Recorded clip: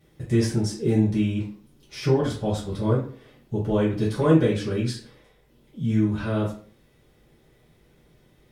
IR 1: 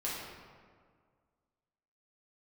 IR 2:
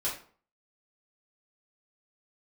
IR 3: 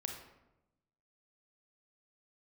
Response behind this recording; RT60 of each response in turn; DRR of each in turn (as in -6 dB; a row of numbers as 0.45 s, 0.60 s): 2; 1.9 s, 0.45 s, 0.95 s; -7.5 dB, -9.0 dB, 2.0 dB